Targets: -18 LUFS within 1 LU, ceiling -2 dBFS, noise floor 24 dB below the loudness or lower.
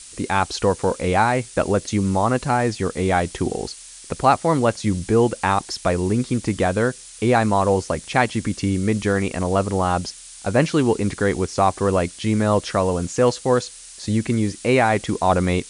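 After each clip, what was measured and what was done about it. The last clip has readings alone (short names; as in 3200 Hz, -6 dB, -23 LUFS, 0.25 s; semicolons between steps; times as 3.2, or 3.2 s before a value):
noise floor -41 dBFS; noise floor target -45 dBFS; loudness -21.0 LUFS; peak -3.0 dBFS; loudness target -18.0 LUFS
-> noise print and reduce 6 dB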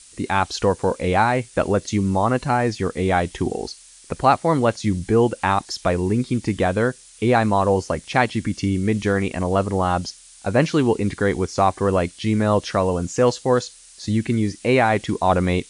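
noise floor -47 dBFS; loudness -21.0 LUFS; peak -3.0 dBFS; loudness target -18.0 LUFS
-> gain +3 dB; limiter -2 dBFS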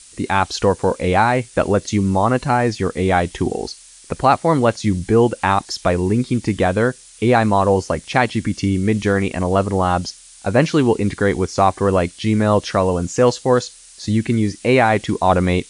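loudness -18.0 LUFS; peak -2.0 dBFS; noise floor -44 dBFS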